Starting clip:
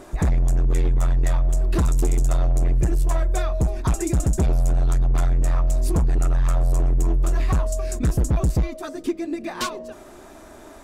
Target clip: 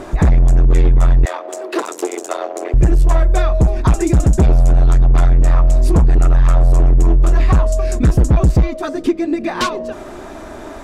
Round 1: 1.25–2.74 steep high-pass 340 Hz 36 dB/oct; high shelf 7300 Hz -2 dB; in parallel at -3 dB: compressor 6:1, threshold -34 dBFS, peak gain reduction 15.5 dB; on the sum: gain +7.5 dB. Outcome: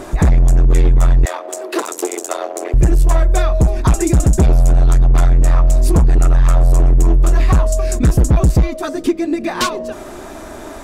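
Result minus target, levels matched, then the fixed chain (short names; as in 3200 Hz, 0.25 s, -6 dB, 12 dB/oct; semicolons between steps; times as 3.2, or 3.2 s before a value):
8000 Hz band +5.5 dB
1.25–2.74 steep high-pass 340 Hz 36 dB/oct; high shelf 7300 Hz -13.5 dB; in parallel at -3 dB: compressor 6:1, threshold -34 dBFS, peak gain reduction 15.5 dB; on the sum: gain +7.5 dB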